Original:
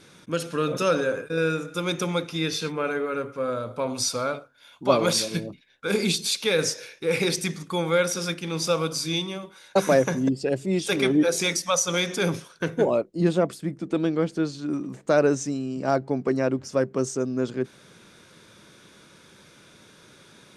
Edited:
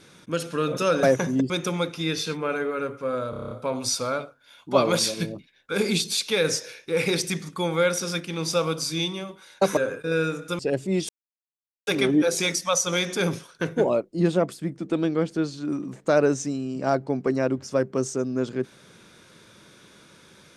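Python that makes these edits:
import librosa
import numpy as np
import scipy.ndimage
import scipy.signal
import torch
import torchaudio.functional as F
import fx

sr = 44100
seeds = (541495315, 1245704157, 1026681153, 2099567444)

y = fx.edit(x, sr, fx.swap(start_s=1.03, length_s=0.82, other_s=9.91, other_length_s=0.47),
    fx.stutter(start_s=3.65, slice_s=0.03, count=8),
    fx.insert_silence(at_s=10.88, length_s=0.78), tone=tone)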